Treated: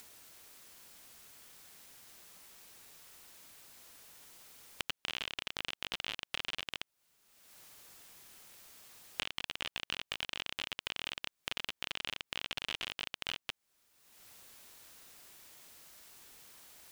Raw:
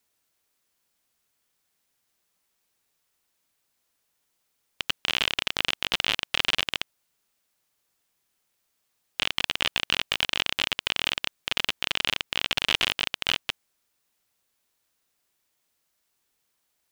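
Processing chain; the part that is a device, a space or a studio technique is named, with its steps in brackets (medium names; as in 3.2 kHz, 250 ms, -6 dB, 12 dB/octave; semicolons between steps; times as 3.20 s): upward and downward compression (upward compressor, threshold -45 dBFS; compression 6:1, threshold -38 dBFS, peak gain reduction 20 dB); trim +3 dB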